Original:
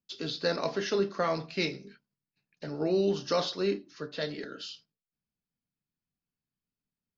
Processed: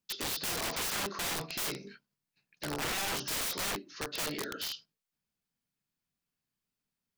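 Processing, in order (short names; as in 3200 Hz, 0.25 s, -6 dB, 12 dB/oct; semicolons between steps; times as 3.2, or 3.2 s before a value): low shelf 430 Hz -6.5 dB; in parallel at -2 dB: limiter -27 dBFS, peak gain reduction 9 dB; on the sum: wrapped overs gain 29 dB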